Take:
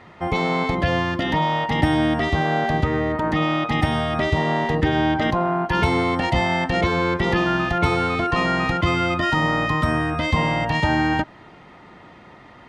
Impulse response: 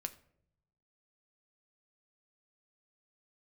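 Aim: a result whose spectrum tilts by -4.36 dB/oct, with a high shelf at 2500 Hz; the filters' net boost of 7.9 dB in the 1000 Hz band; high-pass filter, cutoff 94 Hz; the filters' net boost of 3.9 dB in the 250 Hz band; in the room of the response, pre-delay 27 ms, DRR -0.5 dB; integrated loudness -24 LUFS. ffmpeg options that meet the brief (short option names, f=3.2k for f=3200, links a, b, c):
-filter_complex "[0:a]highpass=94,equalizer=f=250:t=o:g=5,equalizer=f=1k:t=o:g=9,highshelf=f=2.5k:g=3.5,asplit=2[a][b];[1:a]atrim=start_sample=2205,adelay=27[c];[b][c]afir=irnorm=-1:irlink=0,volume=2.5dB[d];[a][d]amix=inputs=2:normalize=0,volume=-11.5dB"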